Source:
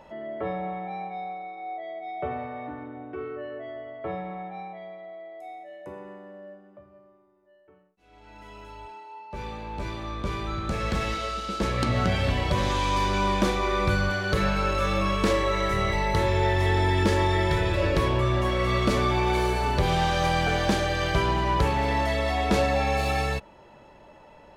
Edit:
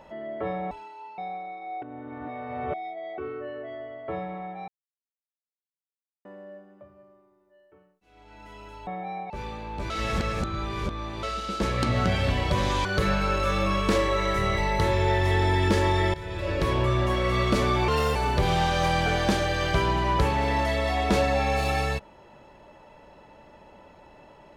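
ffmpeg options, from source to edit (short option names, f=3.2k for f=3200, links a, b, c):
-filter_complex "[0:a]asplit=15[a][b][c][d][e][f][g][h][i][j][k][l][m][n][o];[a]atrim=end=0.712[p];[b]atrim=start=8.828:end=9.302[q];[c]atrim=start=1.138:end=1.782[r];[d]atrim=start=1.778:end=3.142,asetpts=PTS-STARTPTS,areverse[s];[e]atrim=start=3.138:end=4.64,asetpts=PTS-STARTPTS,afade=t=out:st=1.498:d=0.004:c=hsin[t];[f]atrim=start=4.64:end=6.21,asetpts=PTS-STARTPTS,volume=0[u];[g]atrim=start=6.21:end=8.832,asetpts=PTS-STARTPTS,afade=t=in:d=0.004:c=hsin[v];[h]atrim=start=0.708:end=1.142[w];[i]atrim=start=9.298:end=9.902[x];[j]atrim=start=9.898:end=11.232,asetpts=PTS-STARTPTS,areverse[y];[k]atrim=start=11.228:end=12.852[z];[l]atrim=start=14.198:end=17.49,asetpts=PTS-STARTPTS,afade=t=out:st=3.288:d=0.004:c=hsin:silence=0.125893[aa];[m]atrim=start=17.49:end=19.234,asetpts=PTS-STARTPTS,afade=t=in:d=0.65:silence=0.125893[ab];[n]atrim=start=19.23:end=19.56,asetpts=PTS-STARTPTS,asetrate=52920,aresample=44100[ac];[o]atrim=start=19.556[ad];[p][q]acrossfade=d=0.004:c1=hsin:c2=hsin[ae];[ae][r]acrossfade=d=0.004:c1=hsin:c2=hsin[af];[af][s]acrossfade=d=0.004:c1=hsin:c2=hsin[ag];[t][u][v]concat=n=3:v=0:a=1[ah];[ag][ah]acrossfade=d=0.004:c1=hsin:c2=hsin[ai];[ai][w]acrossfade=d=0.004:c1=hsin:c2=hsin[aj];[aj][x]acrossfade=d=0.004:c1=hsin:c2=hsin[ak];[ak][y]acrossfade=d=0.004:c1=hsin:c2=hsin[al];[al][z]acrossfade=d=0.004:c1=hsin:c2=hsin[am];[aa][ab]concat=n=2:v=0:a=1[an];[am][an]acrossfade=d=0.004:c1=hsin:c2=hsin[ao];[ao][ac]acrossfade=d=0.004:c1=hsin:c2=hsin[ap];[ap][ad]acrossfade=d=0.004:c1=hsin:c2=hsin"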